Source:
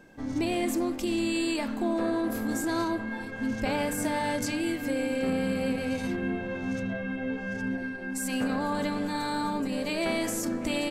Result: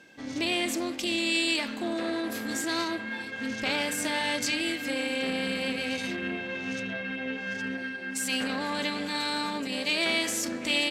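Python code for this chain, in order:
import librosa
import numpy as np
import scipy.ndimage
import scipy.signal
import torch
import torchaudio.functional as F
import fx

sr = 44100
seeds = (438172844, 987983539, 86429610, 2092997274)

y = fx.tube_stage(x, sr, drive_db=20.0, bias=0.55)
y = fx.weighting(y, sr, curve='D')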